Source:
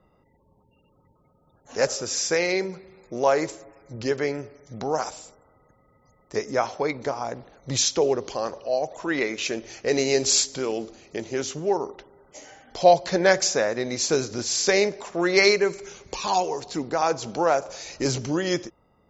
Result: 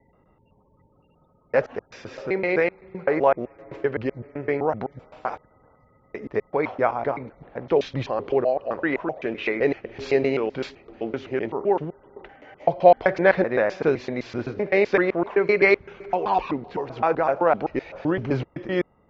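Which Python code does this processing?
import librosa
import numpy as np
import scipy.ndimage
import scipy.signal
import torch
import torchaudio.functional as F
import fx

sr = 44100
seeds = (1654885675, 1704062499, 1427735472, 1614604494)

y = fx.block_reorder(x, sr, ms=128.0, group=3)
y = scipy.signal.sosfilt(scipy.signal.butter(4, 2600.0, 'lowpass', fs=sr, output='sos'), y)
y = y * 10.0 ** (2.0 / 20.0)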